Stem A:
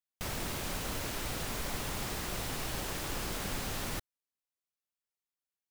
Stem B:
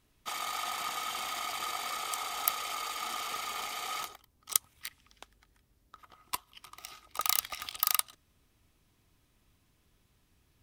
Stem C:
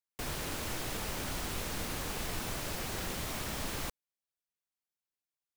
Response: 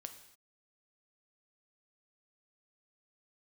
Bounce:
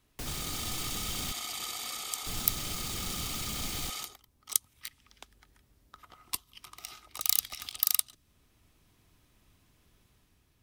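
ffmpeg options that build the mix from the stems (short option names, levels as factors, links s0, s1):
-filter_complex "[1:a]dynaudnorm=f=150:g=7:m=1.58,volume=1[s0];[2:a]volume=1.12,asplit=3[s1][s2][s3];[s1]atrim=end=1.32,asetpts=PTS-STARTPTS,afade=t=out:st=1.316:d=0.004:c=hsin[s4];[s2]atrim=start=1.32:end=2.26,asetpts=PTS-STARTPTS,volume=0[s5];[s3]atrim=start=2.26,asetpts=PTS-STARTPTS,afade=t=in:d=0.004:c=hsin[s6];[s4][s5][s6]concat=n=3:v=0:a=1[s7];[s0][s7]amix=inputs=2:normalize=0,acrossover=split=350|3000[s8][s9][s10];[s9]acompressor=threshold=0.00316:ratio=3[s11];[s8][s11][s10]amix=inputs=3:normalize=0"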